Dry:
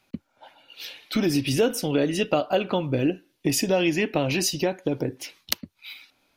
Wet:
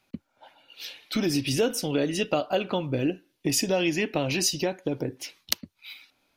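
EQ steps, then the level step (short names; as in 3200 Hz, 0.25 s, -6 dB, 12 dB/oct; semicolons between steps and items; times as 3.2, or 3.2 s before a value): dynamic EQ 5900 Hz, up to +4 dB, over -41 dBFS, Q 0.74; -3.0 dB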